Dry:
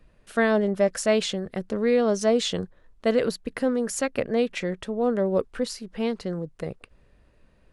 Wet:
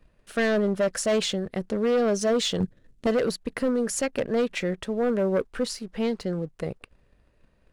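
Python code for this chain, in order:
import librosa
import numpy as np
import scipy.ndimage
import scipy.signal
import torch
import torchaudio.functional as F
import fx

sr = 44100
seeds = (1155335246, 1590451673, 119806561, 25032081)

p1 = 10.0 ** (-20.0 / 20.0) * np.tanh(x / 10.0 ** (-20.0 / 20.0))
p2 = x + F.gain(torch.from_numpy(p1), -5.0).numpy()
p3 = fx.leveller(p2, sr, passes=1)
p4 = fx.graphic_eq(p3, sr, hz=(125, 250, 1000, 8000), db=(9, 7, -11, 4), at=(2.6, 3.07))
p5 = np.clip(p4, -10.0 ** (-12.5 / 20.0), 10.0 ** (-12.5 / 20.0))
y = F.gain(torch.from_numpy(p5), -6.0).numpy()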